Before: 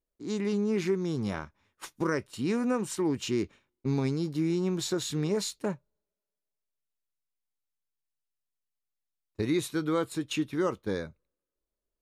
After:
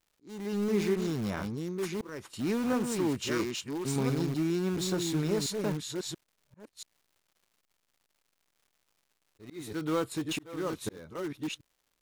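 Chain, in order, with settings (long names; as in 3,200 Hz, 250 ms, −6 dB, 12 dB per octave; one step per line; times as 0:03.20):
delay that plays each chunk backwards 683 ms, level −5 dB
0:03.31–0:03.96: tilt shelving filter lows −4.5 dB, about 650 Hz
in parallel at −12 dB: wrap-around overflow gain 28 dB
on the sum: surface crackle 270 per second −56 dBFS
volume swells 433 ms
level −1.5 dB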